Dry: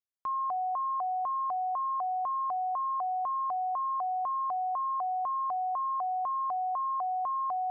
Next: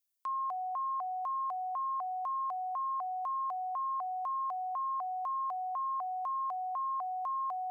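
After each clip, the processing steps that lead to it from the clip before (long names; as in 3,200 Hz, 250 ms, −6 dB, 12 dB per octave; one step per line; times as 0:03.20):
spectral tilt +4.5 dB per octave
level −3.5 dB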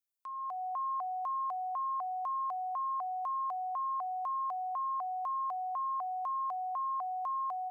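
automatic gain control gain up to 8 dB
level −8 dB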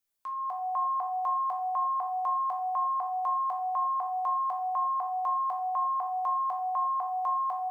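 rectangular room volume 92 cubic metres, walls mixed, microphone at 0.66 metres
level +5.5 dB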